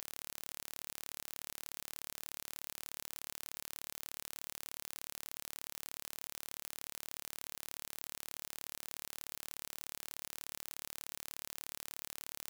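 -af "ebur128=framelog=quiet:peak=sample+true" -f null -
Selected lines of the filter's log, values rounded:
Integrated loudness:
  I:         -44.8 LUFS
  Threshold: -54.8 LUFS
Loudness range:
  LRA:         0.0 LU
  Threshold: -64.8 LUFS
  LRA low:   -44.8 LUFS
  LRA high:  -44.8 LUFS
Sample peak:
  Peak:      -17.1 dBFS
True peak:
  Peak:      -17.1 dBFS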